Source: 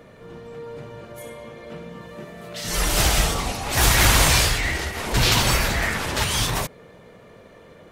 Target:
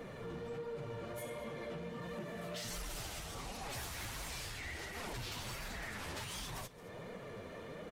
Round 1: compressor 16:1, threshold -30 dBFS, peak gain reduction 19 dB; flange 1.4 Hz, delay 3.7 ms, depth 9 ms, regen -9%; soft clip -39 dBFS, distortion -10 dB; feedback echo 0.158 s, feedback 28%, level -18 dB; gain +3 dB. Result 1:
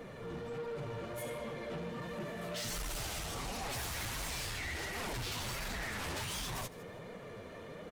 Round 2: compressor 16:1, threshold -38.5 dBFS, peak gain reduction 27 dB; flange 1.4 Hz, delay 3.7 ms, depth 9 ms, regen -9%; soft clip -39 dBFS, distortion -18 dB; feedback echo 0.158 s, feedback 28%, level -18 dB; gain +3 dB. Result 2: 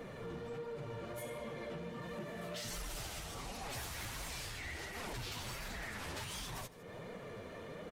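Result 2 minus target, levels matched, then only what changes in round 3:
echo 61 ms early
change: feedback echo 0.219 s, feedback 28%, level -18 dB

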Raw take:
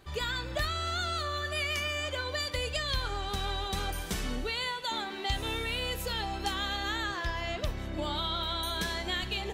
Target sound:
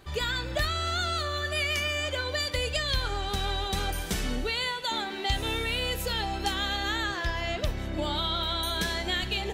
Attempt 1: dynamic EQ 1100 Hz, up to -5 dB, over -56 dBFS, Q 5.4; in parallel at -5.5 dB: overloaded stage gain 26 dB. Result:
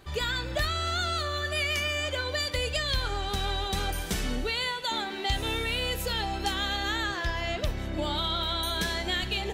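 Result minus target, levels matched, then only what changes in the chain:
overloaded stage: distortion +28 dB
change: overloaded stage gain 20 dB

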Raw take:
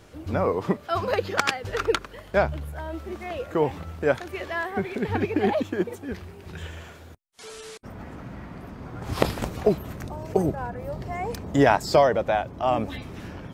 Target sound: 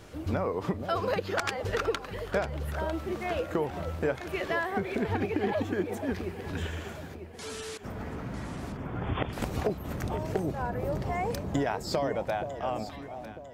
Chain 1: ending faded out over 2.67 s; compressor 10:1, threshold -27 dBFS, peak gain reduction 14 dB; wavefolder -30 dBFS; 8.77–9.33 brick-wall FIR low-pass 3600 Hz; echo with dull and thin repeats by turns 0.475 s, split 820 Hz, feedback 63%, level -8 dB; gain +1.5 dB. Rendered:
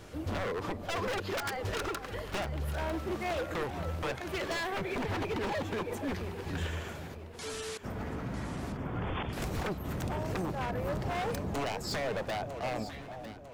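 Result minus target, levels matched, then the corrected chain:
wavefolder: distortion +23 dB
ending faded out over 2.67 s; compressor 10:1, threshold -27 dBFS, peak gain reduction 14 dB; wavefolder -18.5 dBFS; 8.77–9.33 brick-wall FIR low-pass 3600 Hz; echo with dull and thin repeats by turns 0.475 s, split 820 Hz, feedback 63%, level -8 dB; gain +1.5 dB

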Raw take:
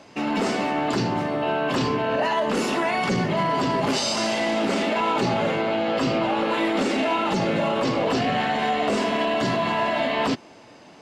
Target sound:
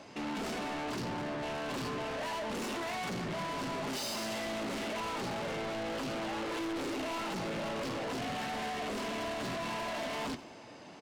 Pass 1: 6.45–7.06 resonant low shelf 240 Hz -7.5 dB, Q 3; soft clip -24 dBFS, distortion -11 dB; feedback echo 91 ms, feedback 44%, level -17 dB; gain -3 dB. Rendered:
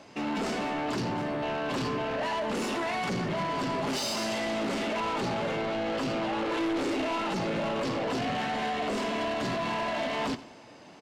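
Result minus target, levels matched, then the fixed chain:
soft clip: distortion -5 dB
6.45–7.06 resonant low shelf 240 Hz -7.5 dB, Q 3; soft clip -32.5 dBFS, distortion -6 dB; feedback echo 91 ms, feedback 44%, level -17 dB; gain -3 dB

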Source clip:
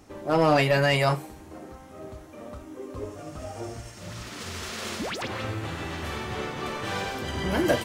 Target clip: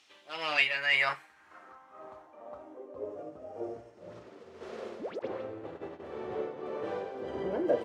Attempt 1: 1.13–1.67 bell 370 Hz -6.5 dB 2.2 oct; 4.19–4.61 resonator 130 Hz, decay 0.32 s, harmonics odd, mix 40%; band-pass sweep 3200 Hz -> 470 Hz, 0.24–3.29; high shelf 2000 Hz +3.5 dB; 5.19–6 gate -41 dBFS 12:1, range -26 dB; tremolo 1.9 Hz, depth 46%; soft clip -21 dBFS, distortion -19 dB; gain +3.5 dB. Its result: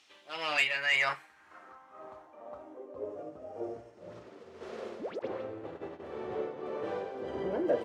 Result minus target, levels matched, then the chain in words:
soft clip: distortion +16 dB
1.13–1.67 bell 370 Hz -6.5 dB 2.2 oct; 4.19–4.61 resonator 130 Hz, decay 0.32 s, harmonics odd, mix 40%; band-pass sweep 3200 Hz -> 470 Hz, 0.24–3.29; high shelf 2000 Hz +3.5 dB; 5.19–6 gate -41 dBFS 12:1, range -26 dB; tremolo 1.9 Hz, depth 46%; soft clip -11 dBFS, distortion -35 dB; gain +3.5 dB

